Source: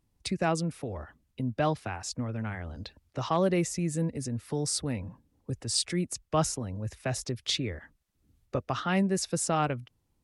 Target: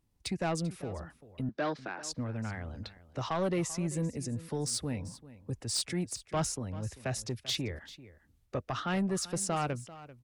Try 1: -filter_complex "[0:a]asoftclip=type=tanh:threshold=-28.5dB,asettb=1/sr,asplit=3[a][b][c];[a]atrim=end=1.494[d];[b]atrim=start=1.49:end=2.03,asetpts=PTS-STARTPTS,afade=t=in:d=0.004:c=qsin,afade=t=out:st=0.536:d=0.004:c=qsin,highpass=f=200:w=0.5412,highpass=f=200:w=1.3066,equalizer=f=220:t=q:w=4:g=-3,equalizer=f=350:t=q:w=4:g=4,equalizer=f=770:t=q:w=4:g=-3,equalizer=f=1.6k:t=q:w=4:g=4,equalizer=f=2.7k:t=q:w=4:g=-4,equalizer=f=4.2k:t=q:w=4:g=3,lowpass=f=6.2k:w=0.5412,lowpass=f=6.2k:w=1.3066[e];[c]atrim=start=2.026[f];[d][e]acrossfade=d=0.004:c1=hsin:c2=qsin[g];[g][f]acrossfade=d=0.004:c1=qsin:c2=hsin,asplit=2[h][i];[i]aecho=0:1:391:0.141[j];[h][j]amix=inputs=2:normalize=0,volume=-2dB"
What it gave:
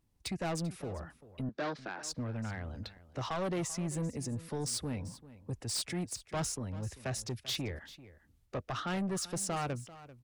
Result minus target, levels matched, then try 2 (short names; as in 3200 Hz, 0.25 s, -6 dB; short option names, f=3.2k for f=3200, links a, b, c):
soft clip: distortion +6 dB
-filter_complex "[0:a]asoftclip=type=tanh:threshold=-22dB,asettb=1/sr,asplit=3[a][b][c];[a]atrim=end=1.494[d];[b]atrim=start=1.49:end=2.03,asetpts=PTS-STARTPTS,afade=t=in:d=0.004:c=qsin,afade=t=out:st=0.536:d=0.004:c=qsin,highpass=f=200:w=0.5412,highpass=f=200:w=1.3066,equalizer=f=220:t=q:w=4:g=-3,equalizer=f=350:t=q:w=4:g=4,equalizer=f=770:t=q:w=4:g=-3,equalizer=f=1.6k:t=q:w=4:g=4,equalizer=f=2.7k:t=q:w=4:g=-4,equalizer=f=4.2k:t=q:w=4:g=3,lowpass=f=6.2k:w=0.5412,lowpass=f=6.2k:w=1.3066[e];[c]atrim=start=2.026[f];[d][e]acrossfade=d=0.004:c1=hsin:c2=qsin[g];[g][f]acrossfade=d=0.004:c1=qsin:c2=hsin,asplit=2[h][i];[i]aecho=0:1:391:0.141[j];[h][j]amix=inputs=2:normalize=0,volume=-2dB"